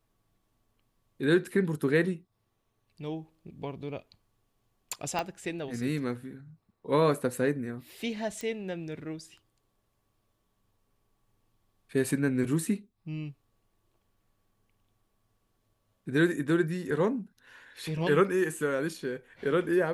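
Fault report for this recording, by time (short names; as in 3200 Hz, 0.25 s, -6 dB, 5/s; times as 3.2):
5.19 pop -17 dBFS
8.41 pop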